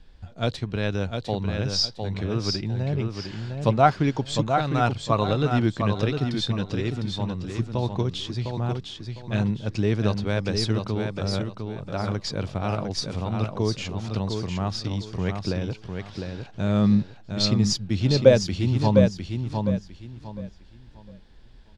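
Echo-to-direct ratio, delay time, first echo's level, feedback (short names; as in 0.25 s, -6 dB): -5.0 dB, 0.705 s, -5.5 dB, 27%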